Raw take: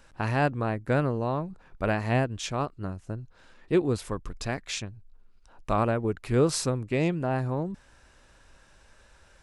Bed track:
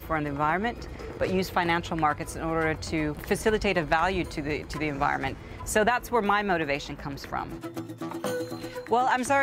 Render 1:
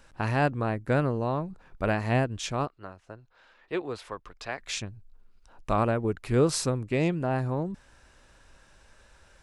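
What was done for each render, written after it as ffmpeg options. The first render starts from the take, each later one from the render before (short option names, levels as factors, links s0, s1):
-filter_complex "[0:a]asettb=1/sr,asplit=3[s0][s1][s2];[s0]atrim=end=2.674[s3];[s1]atrim=start=2.67:end=4.6,asetpts=PTS-STARTPTS,afade=t=in:d=0.004:c=qsin,afade=t=out:st=1.926:d=0.004:c=qsin,acrossover=split=480 4800:gain=0.178 1 0.2[s4][s5][s6];[s4][s5][s6]amix=inputs=3:normalize=0[s7];[s2]atrim=start=4.596[s8];[s3][s7]acrossfade=d=0.004:c1=hsin:c2=qsin[s9];[s9][s8]acrossfade=d=0.004:c1=qsin:c2=hsin"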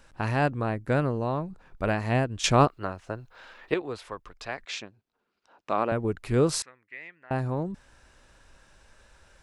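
-filter_complex "[0:a]asettb=1/sr,asplit=3[s0][s1][s2];[s0]atrim=end=4.654[s3];[s1]atrim=start=4.65:end=5.92,asetpts=PTS-STARTPTS,afade=t=in:d=0.004:c=qsin,afade=t=out:st=1.266:d=0.004:c=qsin,highpass=290,lowpass=4800[s4];[s2]atrim=start=5.916[s5];[s3][s4]acrossfade=d=0.004:c1=hsin:c2=qsin[s6];[s6][s5]acrossfade=d=0.004:c1=qsin:c2=hsin,asettb=1/sr,asplit=3[s7][s8][s9];[s7]atrim=end=6.624[s10];[s8]atrim=start=6.62:end=7.31,asetpts=PTS-STARTPTS,afade=t=in:d=0.004:c=qsin,afade=t=out:st=0.686:d=0.004:c=qsin,bandpass=f=1900:t=q:w=6.3[s11];[s9]atrim=start=7.306[s12];[s10][s11]acrossfade=d=0.004:c1=hsin:c2=qsin[s13];[s13][s12]acrossfade=d=0.004:c1=qsin:c2=hsin,asplit=3[s14][s15][s16];[s14]atrim=end=2.442[s17];[s15]atrim=start=2.438:end=3.742,asetpts=PTS-STARTPTS,volume=3.16[s18];[s16]atrim=start=3.738[s19];[s17][s18]acrossfade=d=0.004:c1=hsin:c2=hsin[s20];[s20][s19]acrossfade=d=0.004:c1=hsin:c2=hsin"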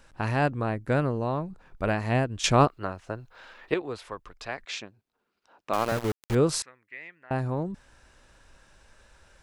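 -filter_complex "[0:a]asettb=1/sr,asplit=3[s0][s1][s2];[s0]atrim=end=5.734[s3];[s1]atrim=start=5.73:end=6.35,asetpts=PTS-STARTPTS,afade=t=in:d=0.004:c=qsin,afade=t=out:st=0.616:d=0.004:c=qsin,aeval=exprs='val(0)*gte(abs(val(0)),0.0376)':c=same[s4];[s2]atrim=start=6.346[s5];[s3][s4]acrossfade=d=0.004:c1=hsin:c2=qsin[s6];[s6][s5]acrossfade=d=0.004:c1=qsin:c2=hsin"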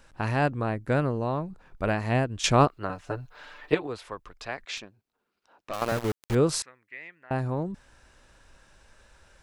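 -filter_complex "[0:a]asettb=1/sr,asplit=3[s0][s1][s2];[s0]atrim=end=2.894[s3];[s1]atrim=start=2.89:end=3.87,asetpts=PTS-STARTPTS,afade=t=in:d=0.004:c=qsin,afade=t=out:st=0.976:d=0.004:c=qsin,aecho=1:1:6.8:0.93,atrim=end_sample=43218[s4];[s2]atrim=start=3.866[s5];[s3][s4]acrossfade=d=0.004:c1=hsin:c2=qsin[s6];[s6][s5]acrossfade=d=0.004:c1=qsin:c2=hsin,asettb=1/sr,asplit=3[s7][s8][s9];[s7]atrim=end=4.774[s10];[s8]atrim=start=4.77:end=5.82,asetpts=PTS-STARTPTS,afade=t=in:d=0.004:c=qsin,afade=t=out:st=1.046:d=0.004:c=qsin,aeval=exprs='(tanh(20*val(0)+0.4)-tanh(0.4))/20':c=same[s11];[s9]atrim=start=5.816[s12];[s10][s11]acrossfade=d=0.004:c1=hsin:c2=qsin[s13];[s13][s12]acrossfade=d=0.004:c1=qsin:c2=hsin"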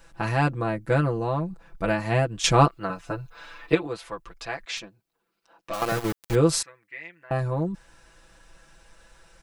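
-af "highshelf=f=10000:g=5,aecho=1:1:6:0.88"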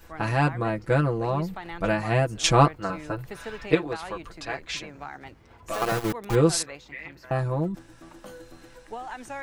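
-filter_complex "[1:a]volume=0.211[s0];[0:a][s0]amix=inputs=2:normalize=0"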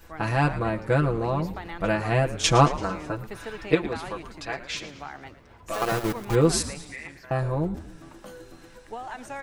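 -filter_complex "[0:a]asplit=6[s0][s1][s2][s3][s4][s5];[s1]adelay=112,afreqshift=-110,volume=0.2[s6];[s2]adelay=224,afreqshift=-220,volume=0.106[s7];[s3]adelay=336,afreqshift=-330,volume=0.0562[s8];[s4]adelay=448,afreqshift=-440,volume=0.0299[s9];[s5]adelay=560,afreqshift=-550,volume=0.0157[s10];[s0][s6][s7][s8][s9][s10]amix=inputs=6:normalize=0"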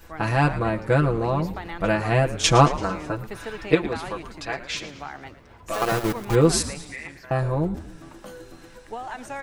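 -af "volume=1.33,alimiter=limit=0.794:level=0:latency=1"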